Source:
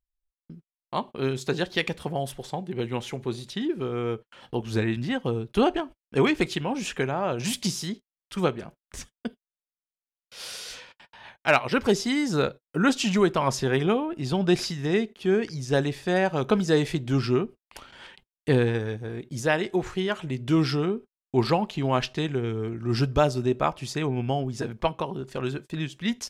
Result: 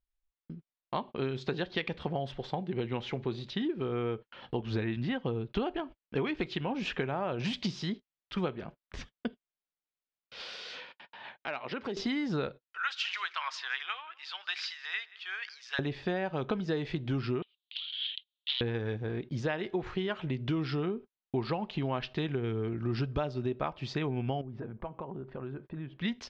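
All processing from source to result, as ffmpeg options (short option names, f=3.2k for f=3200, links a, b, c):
-filter_complex "[0:a]asettb=1/sr,asplit=3[a][b][c];[a]atrim=end=10.414[d];[b]atrim=start=10.41:end=11.97,asetpts=PTS-STARTPTS,afade=t=in:d=0.004:c=qsin,afade=t=out:st=1.556:d=0.004:c=qsin,highpass=190,acompressor=threshold=-36dB:ratio=3:attack=3.2:release=140:knee=1:detection=peak[e];[c]atrim=start=11.966[f];[d][e]acrossfade=d=0.004:c1=hsin:c2=qsin[g];[g][f]acrossfade=d=0.004:c1=qsin:c2=hsin,asettb=1/sr,asplit=3[h][i][j];[h]atrim=end=12.644[k];[i]atrim=start=12.64:end=15.79,asetpts=PTS-STARTPTS,afade=t=in:d=0.004:c=qsin,afade=t=out:st=3.146:d=0.004:c=qsin,highpass=f=1.3k:w=0.5412,highpass=f=1.3k:w=1.3066,aecho=1:1:178:0.0794,atrim=end_sample=138915[l];[j]atrim=start=15.786[m];[k][l]acrossfade=d=0.004:c1=hsin:c2=qsin[n];[n][m]acrossfade=d=0.004:c1=qsin:c2=hsin,asettb=1/sr,asplit=3[o][p][q];[o]atrim=end=17.424[r];[p]atrim=start=17.42:end=18.61,asetpts=PTS-STARTPTS,afade=t=in:d=0.004:c=qsin,afade=t=out:st=1.186:d=0.004:c=qsin,aeval=exprs='0.299*sin(PI/2*5.01*val(0)/0.299)':c=same,asuperpass=centerf=3500:order=4:qfactor=3.4[s];[q]atrim=start=18.606[t];[r][s]acrossfade=d=0.004:c1=hsin:c2=qsin[u];[u][t]acrossfade=d=0.004:c1=qsin:c2=hsin,asettb=1/sr,asplit=3[v][w][x];[v]atrim=end=24.414[y];[w]atrim=start=24.41:end=25.99,asetpts=PTS-STARTPTS,afade=t=in:d=0.004:c=qsin,afade=t=out:st=1.576:d=0.004:c=qsin,lowpass=1.4k,acompressor=threshold=-39dB:ratio=3:attack=3.2:release=140:knee=1:detection=peak[z];[x]atrim=start=25.986[aa];[y][z]acrossfade=d=0.004:c1=hsin:c2=qsin[ab];[ab][aa]acrossfade=d=0.004:c1=qsin:c2=hsin,lowpass=f=4.2k:w=0.5412,lowpass=f=4.2k:w=1.3066,acompressor=threshold=-29dB:ratio=6"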